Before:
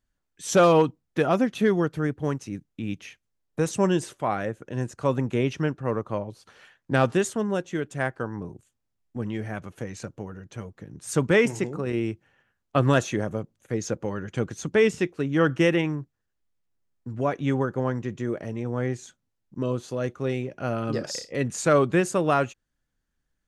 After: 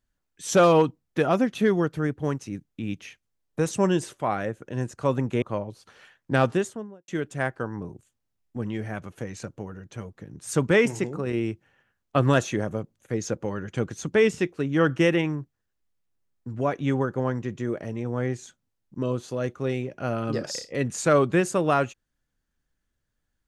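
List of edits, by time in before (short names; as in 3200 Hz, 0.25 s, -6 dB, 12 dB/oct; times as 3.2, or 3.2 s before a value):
5.42–6.02 cut
7.02–7.68 studio fade out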